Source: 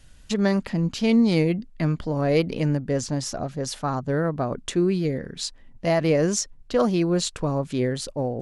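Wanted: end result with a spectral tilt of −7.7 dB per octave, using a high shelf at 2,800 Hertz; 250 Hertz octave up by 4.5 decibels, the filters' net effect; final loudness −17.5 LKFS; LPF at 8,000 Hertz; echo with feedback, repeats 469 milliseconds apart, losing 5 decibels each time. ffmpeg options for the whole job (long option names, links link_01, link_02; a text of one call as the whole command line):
ffmpeg -i in.wav -af "lowpass=8000,equalizer=frequency=250:width_type=o:gain=6,highshelf=frequency=2800:gain=-5,aecho=1:1:469|938|1407|1876|2345|2814|3283:0.562|0.315|0.176|0.0988|0.0553|0.031|0.0173,volume=2.5dB" out.wav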